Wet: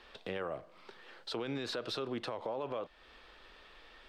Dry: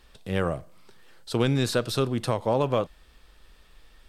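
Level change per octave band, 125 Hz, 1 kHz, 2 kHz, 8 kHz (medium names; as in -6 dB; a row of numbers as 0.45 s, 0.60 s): -22.0 dB, -11.5 dB, -9.5 dB, -17.0 dB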